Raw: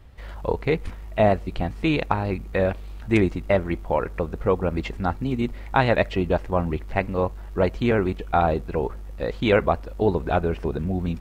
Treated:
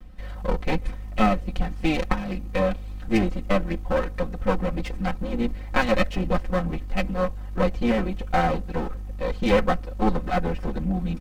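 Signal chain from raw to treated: comb filter that takes the minimum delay 5.5 ms; bass shelf 230 Hz +8 dB; comb 3.9 ms, depth 71%; trim -3 dB

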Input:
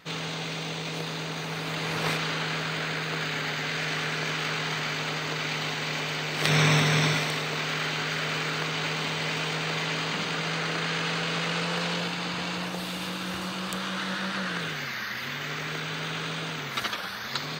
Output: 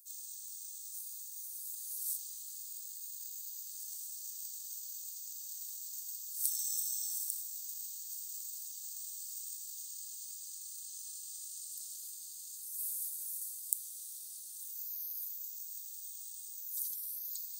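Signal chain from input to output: inverse Chebyshev high-pass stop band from 2.5 kHz, stop band 70 dB; reverse; upward compressor, threshold -58 dBFS; reverse; trim +14 dB

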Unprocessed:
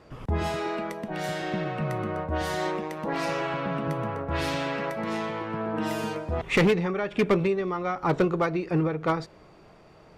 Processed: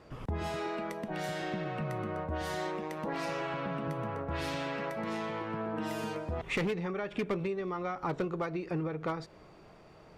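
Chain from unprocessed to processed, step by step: compression 2.5:1, threshold -31 dBFS, peak gain reduction 9 dB; trim -2.5 dB

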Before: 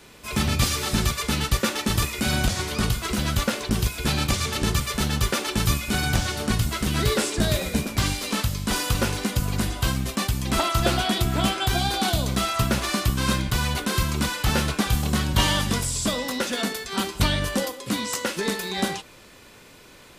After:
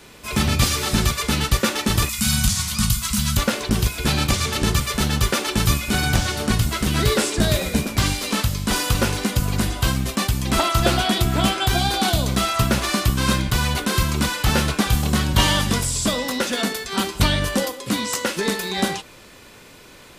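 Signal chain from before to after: 2.09–3.37 s: FFT filter 220 Hz 0 dB, 380 Hz -29 dB, 1.1 kHz -3 dB, 1.7 kHz -6 dB, 7.7 kHz +7 dB; trim +3.5 dB

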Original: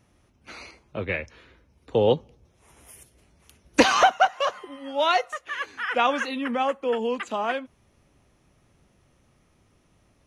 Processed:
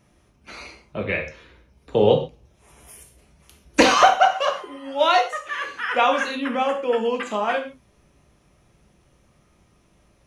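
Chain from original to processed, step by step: gated-style reverb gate 160 ms falling, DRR 2.5 dB; trim +1.5 dB

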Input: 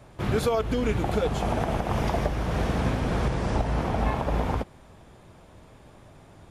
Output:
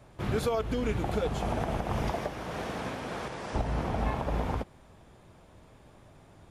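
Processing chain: 2.11–3.53 s: high-pass 230 Hz -> 620 Hz 6 dB/octave; trim -4.5 dB

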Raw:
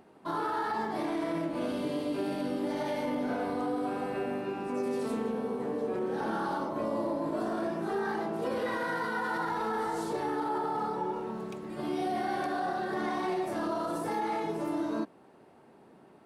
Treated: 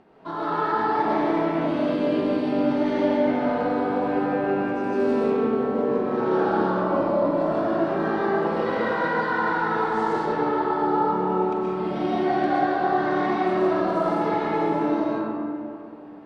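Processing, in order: low-pass 4 kHz 12 dB/octave; algorithmic reverb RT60 2.5 s, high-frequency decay 0.45×, pre-delay 85 ms, DRR -6.5 dB; trim +1.5 dB

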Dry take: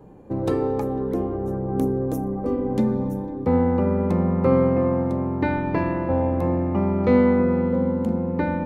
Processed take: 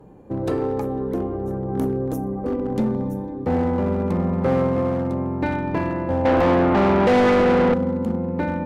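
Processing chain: one-sided clip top -18 dBFS; 6.25–7.74 s: overdrive pedal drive 27 dB, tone 2.4 kHz, clips at -9.5 dBFS

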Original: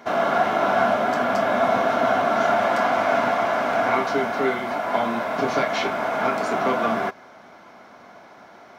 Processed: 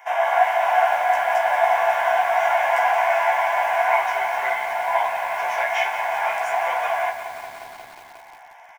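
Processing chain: Chebyshev high-pass 550 Hz, order 6; static phaser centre 860 Hz, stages 8; doubling 15 ms -2.5 dB; bit-crushed delay 179 ms, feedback 80%, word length 7-bit, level -11 dB; trim +3.5 dB

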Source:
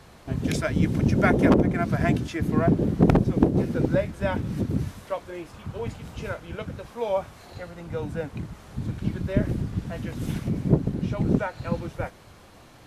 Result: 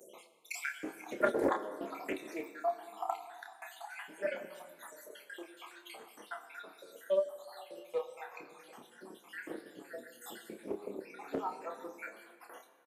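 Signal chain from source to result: random holes in the spectrogram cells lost 75%; peaking EQ 5.4 kHz -9 dB 0.53 oct; gate -56 dBFS, range -48 dB; upward compressor, threshold -37 dBFS; on a send at -9 dB: reverberation RT60 2.0 s, pre-delay 15 ms; on the sum: flange 0.22 Hz, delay 5.3 ms, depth 5.8 ms, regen +60%; high-pass 380 Hz 24 dB/octave; treble shelf 9.5 kHz +10.5 dB; doubling 29 ms -6 dB; loudspeaker Doppler distortion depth 0.27 ms

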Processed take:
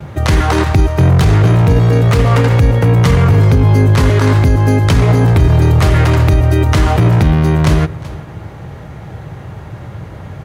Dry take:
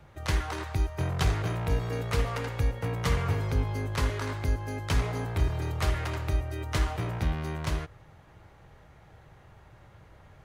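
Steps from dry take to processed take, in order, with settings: 0.62–2.76 s: self-modulated delay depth 0.079 ms; gate with hold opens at -50 dBFS; high-pass 100 Hz 12 dB/octave; bass shelf 360 Hz +11.5 dB; delay 379 ms -21.5 dB; loudness maximiser +20 dB; trim -1 dB

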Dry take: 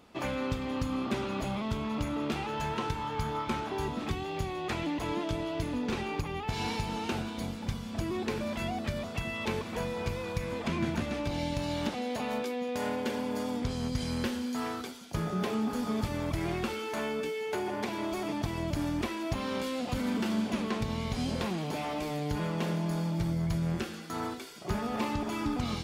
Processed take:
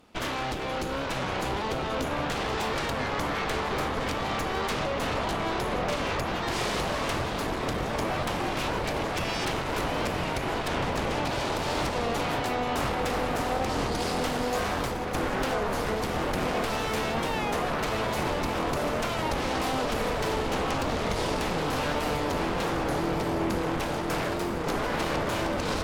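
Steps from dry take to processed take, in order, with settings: compression 2:1, threshold -33 dBFS, peak gain reduction 4.5 dB; Chebyshev shaper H 3 -8 dB, 5 -18 dB, 7 -14 dB, 8 -7 dB, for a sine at -20.5 dBFS; feedback echo behind a low-pass 1009 ms, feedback 82%, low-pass 2 kHz, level -4 dB; warped record 33 1/3 rpm, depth 100 cents

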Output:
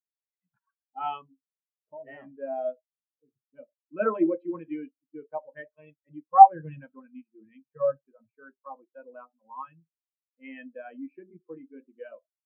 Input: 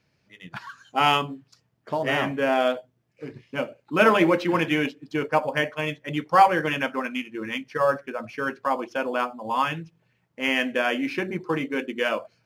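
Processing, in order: 6.55–8.37 s: peaking EQ 140 Hz +10 dB 0.7 oct; in parallel at -12 dB: hard clipper -12.5 dBFS, distortion -17 dB; on the sum: spectral contrast expander 2.5:1; trim +2.5 dB

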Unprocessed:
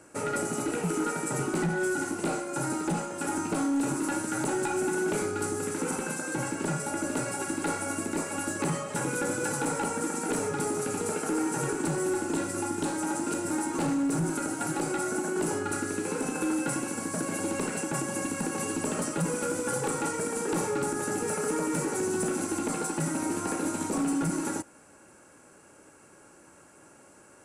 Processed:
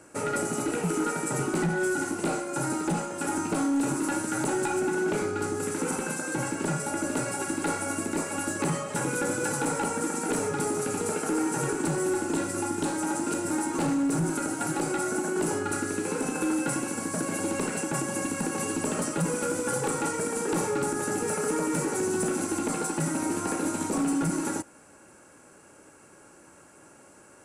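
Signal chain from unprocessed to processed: 4.79–5.60 s: peaking EQ 11 kHz -7 dB 1.3 oct; trim +1.5 dB

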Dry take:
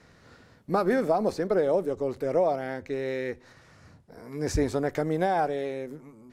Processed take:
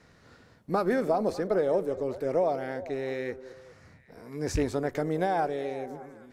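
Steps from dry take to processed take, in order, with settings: rattle on loud lows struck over -24 dBFS, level -27 dBFS; repeats whose band climbs or falls 200 ms, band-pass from 380 Hz, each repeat 0.7 oct, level -12 dB; trim -2 dB

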